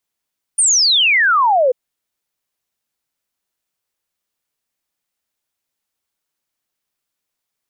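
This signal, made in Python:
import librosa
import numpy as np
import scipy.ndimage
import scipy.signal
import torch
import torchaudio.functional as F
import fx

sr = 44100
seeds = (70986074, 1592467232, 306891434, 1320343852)

y = fx.ess(sr, length_s=1.14, from_hz=9500.0, to_hz=480.0, level_db=-10.0)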